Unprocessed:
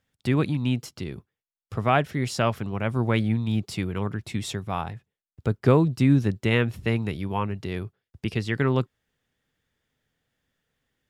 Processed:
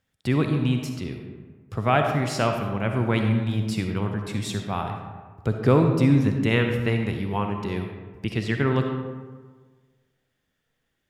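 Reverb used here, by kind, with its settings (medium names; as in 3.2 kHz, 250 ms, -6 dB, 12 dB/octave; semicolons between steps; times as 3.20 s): algorithmic reverb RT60 1.5 s, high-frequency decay 0.5×, pre-delay 20 ms, DRR 4 dB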